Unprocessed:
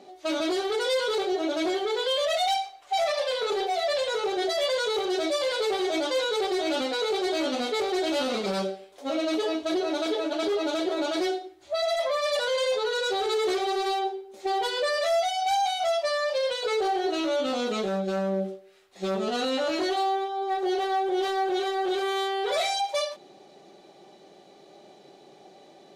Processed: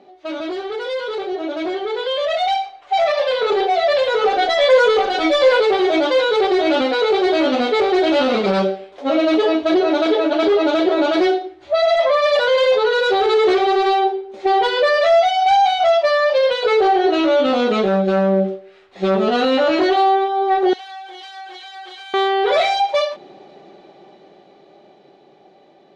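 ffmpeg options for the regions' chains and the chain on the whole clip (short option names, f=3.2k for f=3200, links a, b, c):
-filter_complex "[0:a]asettb=1/sr,asplit=3[a][b][c];[a]atrim=end=4.214[d];[b]atrim=start=4.21:end=5.6,asetpts=PTS-STARTPTS,afade=t=in:d=0.004:c=qsin,afade=t=out:st=1.386:d=0.004:c=qsin,aecho=1:1:4:0.94,atrim=end_sample=61299,asubboost=boost=5:cutoff=52[e];[c]atrim=start=5.596[f];[d][e]acrossfade=d=0.004:c1=hsin:c2=qsin[g];[g][f]acrossfade=d=0.004:c1=qsin:c2=hsin,asettb=1/sr,asplit=3[h][i][j];[h]atrim=end=20.734[k];[i]atrim=start=20.73:end=22.14,asetpts=PTS-STARTPTS,afade=t=in:d=0.004:c=qsin,afade=t=out:st=1.406:d=0.004:c=qsin,aderivative,aecho=1:1:6.4:0.99,atrim=end_sample=62181,acompressor=threshold=-41dB:ratio=6:attack=3.2:release=140:knee=1:detection=peak[l];[j]atrim=start=22.136[m];[k][l]acrossfade=d=0.004:c1=hsin:c2=qsin[n];[n][m]acrossfade=d=0.004:c1=qsin:c2=hsin,lowpass=3.1k,dynaudnorm=f=300:g=17:m=10dB,volume=1.5dB"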